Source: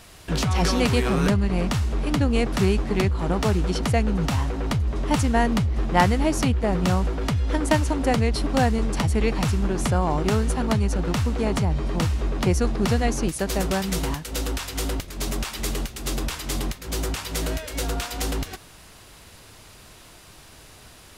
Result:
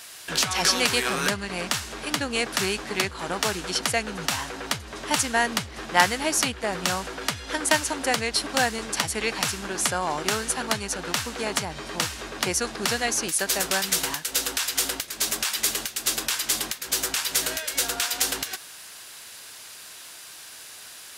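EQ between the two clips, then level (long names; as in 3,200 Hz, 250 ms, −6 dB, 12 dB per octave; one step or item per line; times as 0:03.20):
high-pass filter 700 Hz 6 dB per octave
parametric band 1,600 Hz +5 dB 0.27 octaves
high-shelf EQ 2,500 Hz +9.5 dB
0.0 dB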